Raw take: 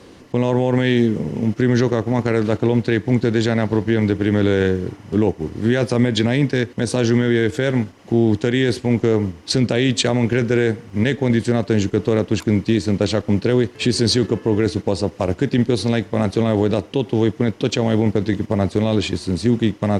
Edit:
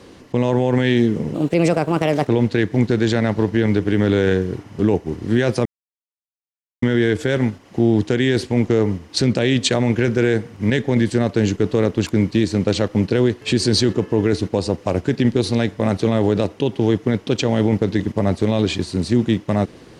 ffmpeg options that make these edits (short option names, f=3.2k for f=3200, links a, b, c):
-filter_complex "[0:a]asplit=5[a][b][c][d][e];[a]atrim=end=1.344[f];[b]atrim=start=1.34:end=2.61,asetpts=PTS-STARTPTS,asetrate=59976,aresample=44100[g];[c]atrim=start=2.606:end=5.99,asetpts=PTS-STARTPTS,afade=t=out:st=3.38:d=0.004:c=hsin[h];[d]atrim=start=5.99:end=7.16,asetpts=PTS-STARTPTS,volume=0[i];[e]atrim=start=7.16,asetpts=PTS-STARTPTS,afade=t=in:d=0.004:c=hsin[j];[f][g]acrossfade=d=0.004:c1=hsin:c2=hsin[k];[h][i][j]concat=n=3:v=0:a=1[l];[k][l]acrossfade=d=0.004:c1=hsin:c2=hsin"